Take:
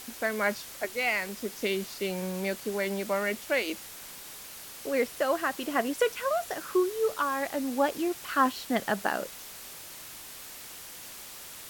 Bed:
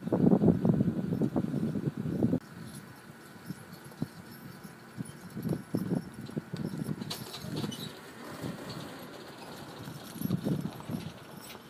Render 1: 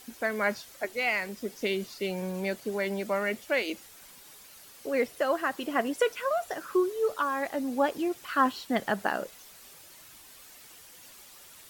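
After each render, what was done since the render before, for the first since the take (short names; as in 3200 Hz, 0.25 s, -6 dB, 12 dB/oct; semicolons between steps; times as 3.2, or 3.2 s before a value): denoiser 9 dB, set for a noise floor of -45 dBFS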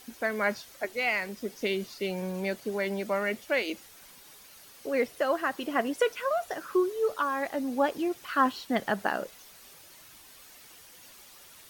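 bell 11000 Hz -2 dB; notch 7500 Hz, Q 17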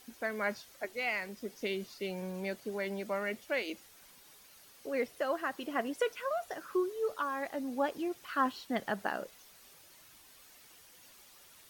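gain -6 dB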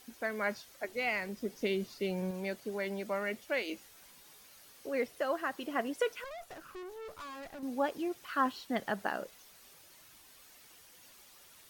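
0.88–2.31 low shelf 460 Hz +6 dB; 3.7–4.89 doubler 19 ms -7.5 dB; 6.24–7.63 tube stage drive 43 dB, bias 0.75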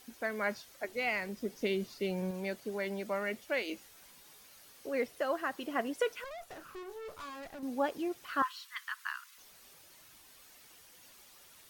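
6.49–7.3 doubler 32 ms -9 dB; 8.42–9.38 steep high-pass 1000 Hz 96 dB/oct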